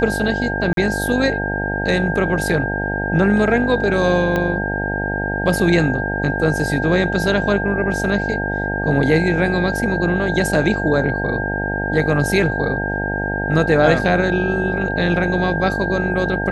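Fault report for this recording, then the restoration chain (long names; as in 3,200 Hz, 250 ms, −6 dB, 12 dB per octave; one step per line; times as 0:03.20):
mains buzz 50 Hz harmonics 18 −24 dBFS
whistle 1,600 Hz −23 dBFS
0:00.73–0:00.77: drop-out 42 ms
0:04.36: click −8 dBFS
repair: click removal
hum removal 50 Hz, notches 18
notch filter 1,600 Hz, Q 30
repair the gap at 0:00.73, 42 ms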